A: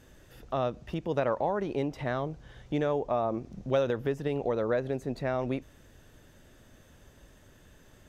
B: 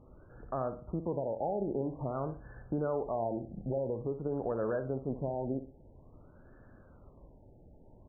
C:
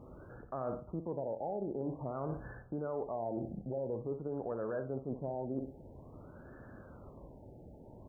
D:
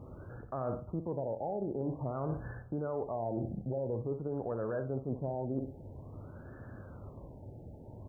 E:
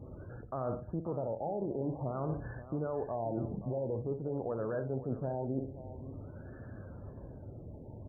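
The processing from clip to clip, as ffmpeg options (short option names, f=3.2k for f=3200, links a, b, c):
-af "alimiter=limit=-23.5dB:level=0:latency=1:release=331,aecho=1:1:60|120|180|240:0.299|0.102|0.0345|0.0117,afftfilt=real='re*lt(b*sr/1024,870*pow(1800/870,0.5+0.5*sin(2*PI*0.49*pts/sr)))':imag='im*lt(b*sr/1024,870*pow(1800/870,0.5+0.5*sin(2*PI*0.49*pts/sr)))':win_size=1024:overlap=0.75"
-af "highpass=f=86:p=1,areverse,acompressor=threshold=-42dB:ratio=5,areverse,volume=6.5dB"
-af "equalizer=f=100:t=o:w=0.88:g=8,volume=1.5dB"
-af "afftdn=nr=13:nf=-54,areverse,acompressor=mode=upward:threshold=-42dB:ratio=2.5,areverse,aecho=1:1:528:0.2"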